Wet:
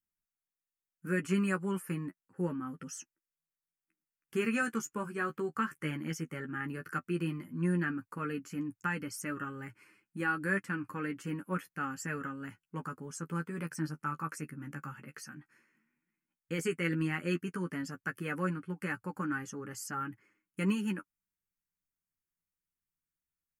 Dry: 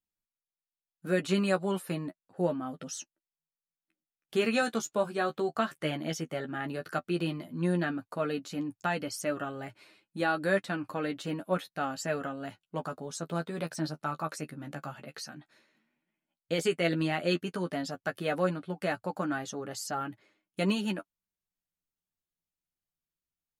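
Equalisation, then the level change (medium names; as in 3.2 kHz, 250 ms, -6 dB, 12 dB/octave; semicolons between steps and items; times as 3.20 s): static phaser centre 1.6 kHz, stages 4; 0.0 dB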